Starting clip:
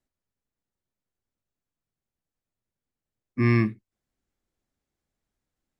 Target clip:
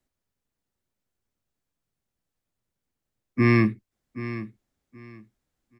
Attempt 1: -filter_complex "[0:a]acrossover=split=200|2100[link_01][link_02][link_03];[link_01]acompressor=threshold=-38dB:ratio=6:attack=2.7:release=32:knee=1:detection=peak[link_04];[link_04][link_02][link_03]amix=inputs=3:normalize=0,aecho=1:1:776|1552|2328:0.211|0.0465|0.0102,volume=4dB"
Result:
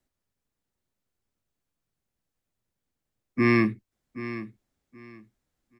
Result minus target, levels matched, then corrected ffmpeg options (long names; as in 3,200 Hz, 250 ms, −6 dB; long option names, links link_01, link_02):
downward compressor: peak gain reduction +10 dB
-filter_complex "[0:a]acrossover=split=200|2100[link_01][link_02][link_03];[link_01]acompressor=threshold=-26dB:ratio=6:attack=2.7:release=32:knee=1:detection=peak[link_04];[link_04][link_02][link_03]amix=inputs=3:normalize=0,aecho=1:1:776|1552|2328:0.211|0.0465|0.0102,volume=4dB"